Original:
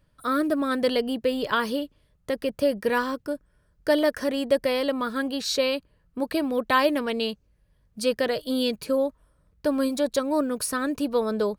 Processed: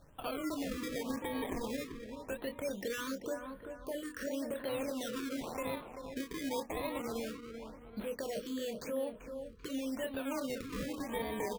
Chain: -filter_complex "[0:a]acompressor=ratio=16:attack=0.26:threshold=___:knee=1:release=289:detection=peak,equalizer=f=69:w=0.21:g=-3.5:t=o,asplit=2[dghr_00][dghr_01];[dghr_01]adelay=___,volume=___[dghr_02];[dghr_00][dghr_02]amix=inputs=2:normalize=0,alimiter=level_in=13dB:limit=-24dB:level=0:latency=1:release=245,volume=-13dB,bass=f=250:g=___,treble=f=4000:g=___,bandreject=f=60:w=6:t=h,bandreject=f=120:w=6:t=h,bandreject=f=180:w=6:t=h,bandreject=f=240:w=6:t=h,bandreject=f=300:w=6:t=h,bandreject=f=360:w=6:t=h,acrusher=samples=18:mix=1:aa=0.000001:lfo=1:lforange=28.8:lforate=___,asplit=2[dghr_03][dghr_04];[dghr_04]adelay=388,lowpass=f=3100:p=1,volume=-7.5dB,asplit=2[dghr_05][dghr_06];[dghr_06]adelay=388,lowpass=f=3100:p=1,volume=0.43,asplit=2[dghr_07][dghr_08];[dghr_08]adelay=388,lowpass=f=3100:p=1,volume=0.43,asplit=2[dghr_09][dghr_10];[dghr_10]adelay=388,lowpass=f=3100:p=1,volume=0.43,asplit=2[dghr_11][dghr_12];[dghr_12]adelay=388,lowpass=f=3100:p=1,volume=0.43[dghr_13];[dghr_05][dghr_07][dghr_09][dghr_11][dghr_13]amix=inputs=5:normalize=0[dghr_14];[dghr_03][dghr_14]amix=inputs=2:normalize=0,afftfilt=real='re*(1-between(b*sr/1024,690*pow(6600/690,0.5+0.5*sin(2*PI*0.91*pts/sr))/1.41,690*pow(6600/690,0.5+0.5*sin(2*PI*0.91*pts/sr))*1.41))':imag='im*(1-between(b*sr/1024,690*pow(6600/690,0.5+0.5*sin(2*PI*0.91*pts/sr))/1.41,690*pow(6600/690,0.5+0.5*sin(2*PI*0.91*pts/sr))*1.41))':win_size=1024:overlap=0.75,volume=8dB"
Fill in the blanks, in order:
-32dB, 26, -7dB, -4, -9, 0.2